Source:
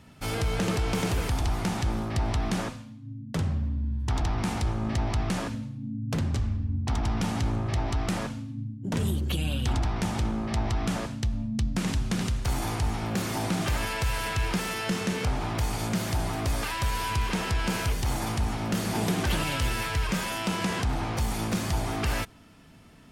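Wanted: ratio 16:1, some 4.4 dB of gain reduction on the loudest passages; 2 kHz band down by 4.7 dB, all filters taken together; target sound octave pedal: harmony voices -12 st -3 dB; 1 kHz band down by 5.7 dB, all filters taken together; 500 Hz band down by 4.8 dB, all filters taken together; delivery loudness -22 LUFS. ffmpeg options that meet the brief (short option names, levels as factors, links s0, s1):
-filter_complex "[0:a]equalizer=f=500:t=o:g=-5,equalizer=f=1000:t=o:g=-4.5,equalizer=f=2000:t=o:g=-4.5,acompressor=threshold=0.0447:ratio=16,asplit=2[s0][s1];[s1]asetrate=22050,aresample=44100,atempo=2,volume=0.708[s2];[s0][s2]amix=inputs=2:normalize=0,volume=3.16"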